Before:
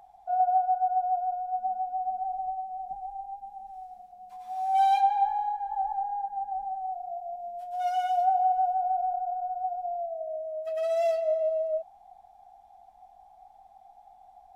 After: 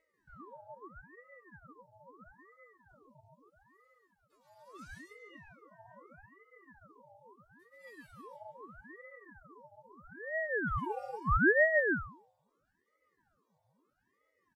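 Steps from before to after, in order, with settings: inharmonic resonator 310 Hz, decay 0.53 s, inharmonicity 0.008; delay 140 ms -3.5 dB; ring modulator with a swept carrier 690 Hz, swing 85%, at 0.77 Hz; trim +7 dB

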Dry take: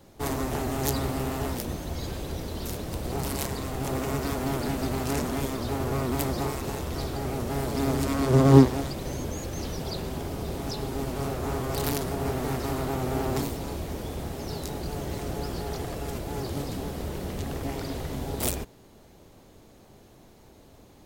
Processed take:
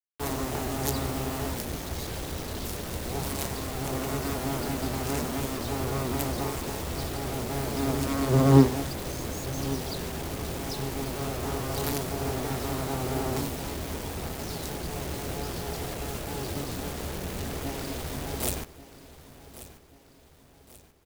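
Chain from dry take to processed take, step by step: hum notches 50/100/150/200/250/300/350/400 Hz; bit crusher 6-bit; feedback delay 1135 ms, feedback 45%, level -16 dB; trim -1.5 dB

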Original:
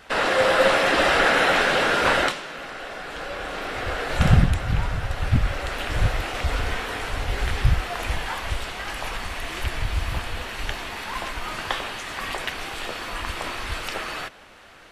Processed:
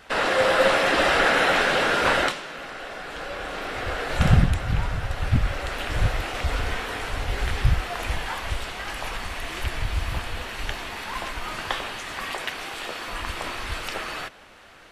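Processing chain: 12.23–13.08 s: bass shelf 110 Hz -11 dB; trim -1 dB

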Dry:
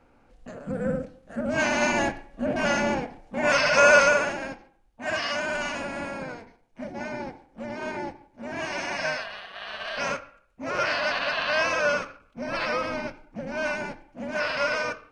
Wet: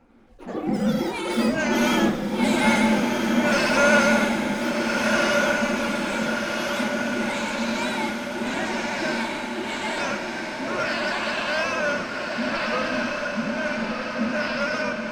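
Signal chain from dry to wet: coarse spectral quantiser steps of 15 dB; peaking EQ 220 Hz +13 dB 0.39 oct; in parallel at -5.5 dB: overload inside the chain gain 23.5 dB; on the sum: reverberation RT60 2.6 s, pre-delay 58 ms, DRR 15 dB; ever faster or slower copies 91 ms, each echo +7 st, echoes 3, each echo -6 dB; on a send: echo that smears into a reverb 1395 ms, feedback 55%, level -3 dB; on the sum: attacks held to a fixed rise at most 220 dB/s; trim -3.5 dB

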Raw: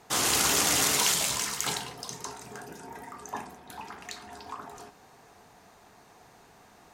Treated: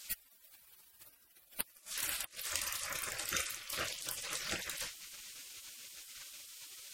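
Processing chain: inverted gate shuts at -18 dBFS, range -31 dB; spectral gate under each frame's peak -20 dB weak; trim +16 dB

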